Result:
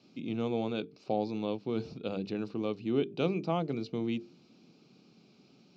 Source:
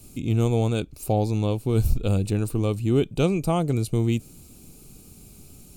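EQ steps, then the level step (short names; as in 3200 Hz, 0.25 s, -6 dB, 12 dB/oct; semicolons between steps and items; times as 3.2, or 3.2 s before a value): HPF 170 Hz 24 dB/oct; steep low-pass 5300 Hz 48 dB/oct; notches 50/100/150/200/250/300/350/400/450 Hz; -6.5 dB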